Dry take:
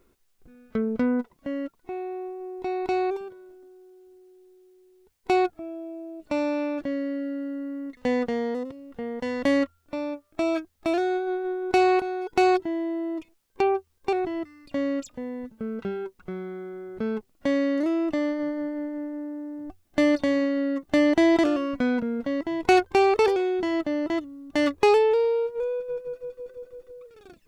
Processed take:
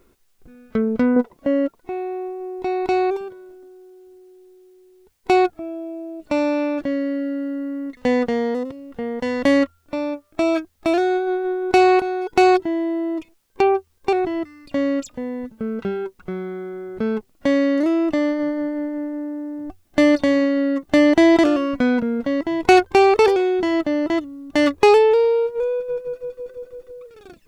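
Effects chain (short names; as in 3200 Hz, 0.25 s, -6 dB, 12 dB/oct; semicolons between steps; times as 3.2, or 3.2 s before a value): 1.16–1.81 bell 510 Hz +8 dB 1.9 oct; gain +6 dB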